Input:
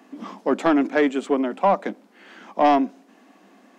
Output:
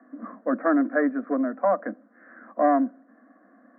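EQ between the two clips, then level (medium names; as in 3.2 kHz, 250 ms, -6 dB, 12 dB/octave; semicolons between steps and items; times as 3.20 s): Chebyshev band-pass 220–1800 Hz, order 4; static phaser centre 590 Hz, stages 8; 0.0 dB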